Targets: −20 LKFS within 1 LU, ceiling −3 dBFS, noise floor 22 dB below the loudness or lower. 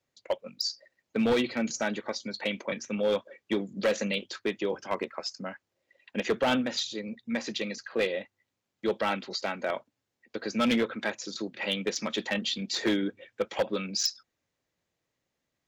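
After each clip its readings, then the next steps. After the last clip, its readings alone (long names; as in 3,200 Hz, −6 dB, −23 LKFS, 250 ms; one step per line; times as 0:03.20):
share of clipped samples 0.9%; peaks flattened at −20.0 dBFS; integrated loudness −31.0 LKFS; sample peak −20.0 dBFS; target loudness −20.0 LKFS
→ clipped peaks rebuilt −20 dBFS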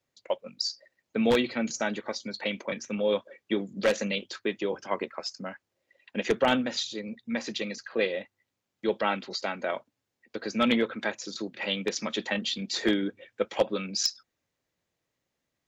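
share of clipped samples 0.0%; integrated loudness −30.0 LKFS; sample peak −11.0 dBFS; target loudness −20.0 LKFS
→ level +10 dB
brickwall limiter −3 dBFS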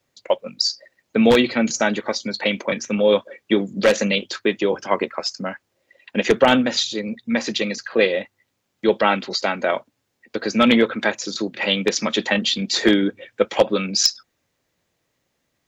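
integrated loudness −20.5 LKFS; sample peak −3.0 dBFS; background noise floor −73 dBFS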